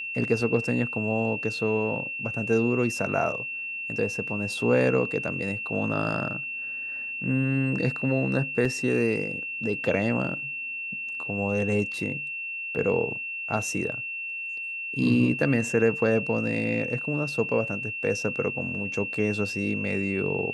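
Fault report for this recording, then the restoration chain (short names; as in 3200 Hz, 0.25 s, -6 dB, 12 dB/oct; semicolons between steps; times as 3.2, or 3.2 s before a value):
tone 2700 Hz -31 dBFS
8.65 gap 4.3 ms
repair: notch 2700 Hz, Q 30; interpolate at 8.65, 4.3 ms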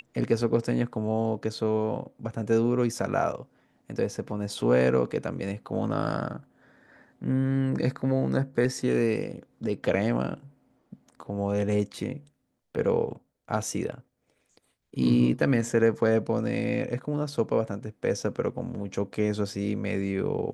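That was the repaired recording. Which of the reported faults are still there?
none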